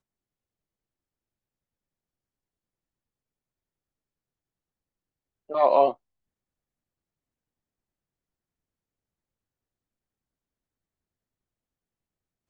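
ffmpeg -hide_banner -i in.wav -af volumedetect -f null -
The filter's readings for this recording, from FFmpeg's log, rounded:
mean_volume: -34.5 dB
max_volume: -7.6 dB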